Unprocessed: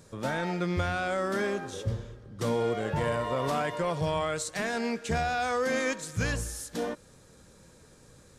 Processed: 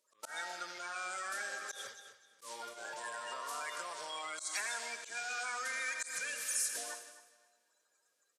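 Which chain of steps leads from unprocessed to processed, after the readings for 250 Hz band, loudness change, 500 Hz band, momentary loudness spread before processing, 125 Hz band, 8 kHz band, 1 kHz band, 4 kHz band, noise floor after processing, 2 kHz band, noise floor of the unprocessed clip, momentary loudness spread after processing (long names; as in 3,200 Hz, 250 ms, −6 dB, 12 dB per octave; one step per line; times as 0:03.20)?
−29.5 dB, −8.5 dB, −20.5 dB, 6 LU, below −40 dB, +1.5 dB, −10.5 dB, −4.0 dB, −78 dBFS, −5.0 dB, −56 dBFS, 12 LU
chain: spectral magnitudes quantised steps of 30 dB
parametric band 6,700 Hz +6 dB 1.8 octaves
comb and all-pass reverb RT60 2.5 s, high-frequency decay 0.95×, pre-delay 25 ms, DRR 7.5 dB
downward compressor 10 to 1, threshold −33 dBFS, peak gain reduction 10.5 dB
high-pass filter 1,100 Hz 12 dB per octave
noise gate −48 dBFS, range −17 dB
dynamic equaliser 9,400 Hz, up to +5 dB, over −56 dBFS, Q 1
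repeating echo 257 ms, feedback 24%, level −15.5 dB
volume swells 123 ms
level +1 dB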